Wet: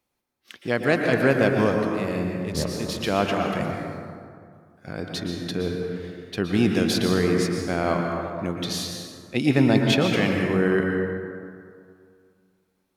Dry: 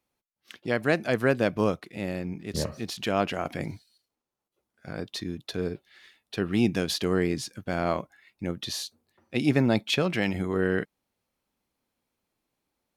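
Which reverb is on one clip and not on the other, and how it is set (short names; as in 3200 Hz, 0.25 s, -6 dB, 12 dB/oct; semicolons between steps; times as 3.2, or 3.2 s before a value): plate-style reverb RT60 2.2 s, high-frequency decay 0.45×, pre-delay 0.105 s, DRR 1.5 dB; gain +2.5 dB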